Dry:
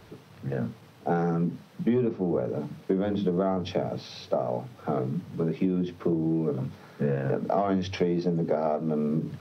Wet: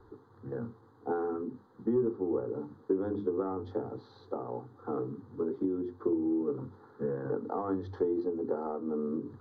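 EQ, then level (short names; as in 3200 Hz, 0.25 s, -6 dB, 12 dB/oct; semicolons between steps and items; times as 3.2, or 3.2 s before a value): running mean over 16 samples; fixed phaser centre 630 Hz, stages 6; -1.5 dB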